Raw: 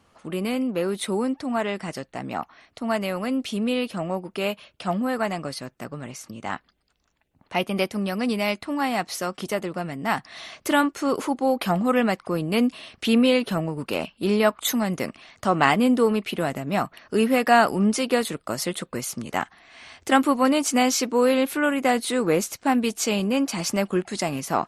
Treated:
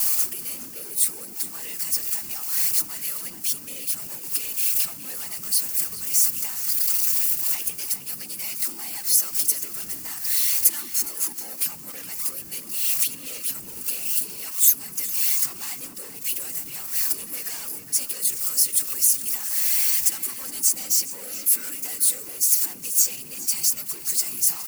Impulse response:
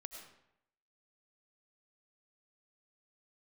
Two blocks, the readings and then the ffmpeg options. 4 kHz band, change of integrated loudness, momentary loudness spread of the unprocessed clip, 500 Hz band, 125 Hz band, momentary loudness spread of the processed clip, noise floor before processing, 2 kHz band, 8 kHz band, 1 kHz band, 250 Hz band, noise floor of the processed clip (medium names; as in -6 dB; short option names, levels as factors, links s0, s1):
0.0 dB, +2.5 dB, 13 LU, -25.0 dB, under -15 dB, 11 LU, -67 dBFS, -11.0 dB, +12.0 dB, -21.5 dB, -24.5 dB, -39 dBFS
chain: -filter_complex "[0:a]aeval=exprs='val(0)+0.5*0.0316*sgn(val(0))':c=same,bandreject=f=60:t=h:w=6,bandreject=f=120:t=h:w=6,bandreject=f=180:t=h:w=6,bandreject=f=240:t=h:w=6,asoftclip=type=tanh:threshold=0.106,superequalizer=8b=0.398:13b=0.501,acompressor=threshold=0.02:ratio=20,adynamicequalizer=threshold=0.00178:dfrequency=190:dqfactor=5.6:tfrequency=190:tqfactor=5.6:attack=5:release=100:ratio=0.375:range=2.5:mode=cutabove:tftype=bell,afftfilt=real='hypot(re,im)*cos(2*PI*random(0))':imag='hypot(re,im)*sin(2*PI*random(1))':win_size=512:overlap=0.75,crystalizer=i=4.5:c=0,asplit=2[s0][s1];[s1]adelay=414,volume=0.355,highshelf=f=4000:g=-9.32[s2];[s0][s2]amix=inputs=2:normalize=0,crystalizer=i=5:c=0,volume=0.531"